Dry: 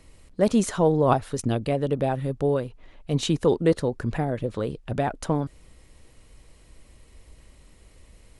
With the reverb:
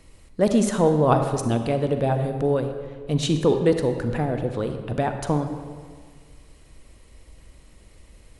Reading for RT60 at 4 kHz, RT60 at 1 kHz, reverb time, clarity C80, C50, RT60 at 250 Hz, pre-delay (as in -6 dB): 1.1 s, 1.7 s, 1.8 s, 8.5 dB, 7.5 dB, 1.9 s, 36 ms